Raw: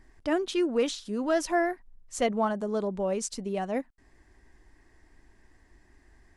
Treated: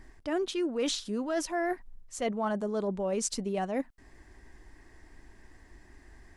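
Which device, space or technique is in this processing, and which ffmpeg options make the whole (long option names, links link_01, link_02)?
compression on the reversed sound: -af "areverse,acompressor=threshold=-33dB:ratio=6,areverse,volume=5dB"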